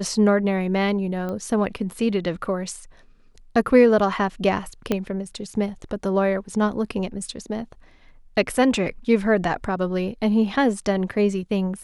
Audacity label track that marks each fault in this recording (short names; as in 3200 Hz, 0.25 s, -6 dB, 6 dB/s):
1.290000	1.290000	pop -19 dBFS
4.920000	4.920000	pop -9 dBFS